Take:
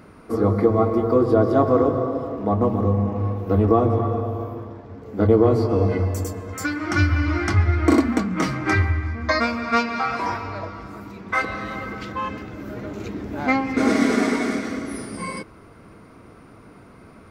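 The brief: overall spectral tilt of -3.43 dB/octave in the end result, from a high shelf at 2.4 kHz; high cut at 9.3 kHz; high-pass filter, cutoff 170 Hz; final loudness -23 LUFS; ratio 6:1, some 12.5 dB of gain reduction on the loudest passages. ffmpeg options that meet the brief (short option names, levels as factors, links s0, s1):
-af "highpass=170,lowpass=9300,highshelf=f=2400:g=-8.5,acompressor=threshold=0.0501:ratio=6,volume=2.51"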